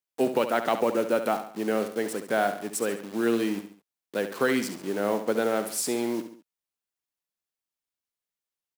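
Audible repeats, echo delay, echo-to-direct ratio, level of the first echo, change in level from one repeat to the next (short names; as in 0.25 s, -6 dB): 3, 69 ms, -9.0 dB, -10.0 dB, -7.5 dB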